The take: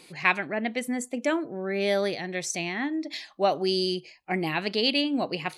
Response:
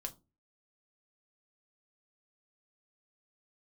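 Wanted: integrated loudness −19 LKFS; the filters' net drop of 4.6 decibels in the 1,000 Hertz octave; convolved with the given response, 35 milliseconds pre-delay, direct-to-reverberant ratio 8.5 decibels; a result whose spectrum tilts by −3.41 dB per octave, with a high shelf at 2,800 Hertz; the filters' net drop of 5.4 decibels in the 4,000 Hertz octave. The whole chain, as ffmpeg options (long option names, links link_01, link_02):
-filter_complex "[0:a]equalizer=frequency=1000:width_type=o:gain=-6,highshelf=frequency=2800:gain=-3.5,equalizer=frequency=4000:width_type=o:gain=-4,asplit=2[link_01][link_02];[1:a]atrim=start_sample=2205,adelay=35[link_03];[link_02][link_03]afir=irnorm=-1:irlink=0,volume=-6.5dB[link_04];[link_01][link_04]amix=inputs=2:normalize=0,volume=10dB"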